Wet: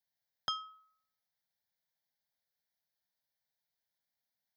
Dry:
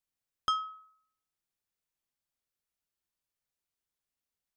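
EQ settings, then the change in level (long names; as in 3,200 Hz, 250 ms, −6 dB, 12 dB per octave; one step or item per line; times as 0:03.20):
high-pass filter 130 Hz
phaser with its sweep stopped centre 1,800 Hz, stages 8
+3.5 dB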